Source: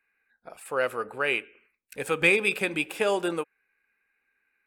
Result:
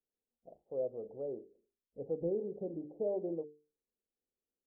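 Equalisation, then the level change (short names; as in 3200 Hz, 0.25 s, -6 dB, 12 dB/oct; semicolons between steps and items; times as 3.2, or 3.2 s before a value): steep low-pass 670 Hz 48 dB/oct; notches 50/100/150/200/250/300/350/400/450 Hz; -7.5 dB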